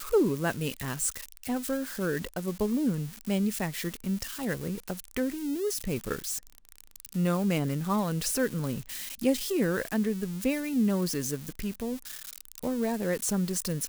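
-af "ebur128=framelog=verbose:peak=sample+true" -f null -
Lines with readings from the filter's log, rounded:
Integrated loudness:
  I:         -30.3 LUFS
  Threshold: -40.5 LUFS
Loudness range:
  LRA:         3.1 LU
  Threshold: -50.5 LUFS
  LRA low:   -32.1 LUFS
  LRA high:  -28.9 LUFS
Sample peak:
  Peak:      -13.6 dBFS
True peak:
  Peak:      -13.6 dBFS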